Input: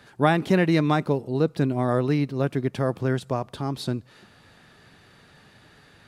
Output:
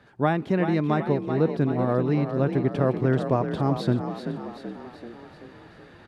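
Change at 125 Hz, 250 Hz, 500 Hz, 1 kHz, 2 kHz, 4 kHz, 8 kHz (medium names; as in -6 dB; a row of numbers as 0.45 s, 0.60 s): +0.5 dB, 0.0 dB, +0.5 dB, -1.0 dB, -4.0 dB, -6.0 dB, no reading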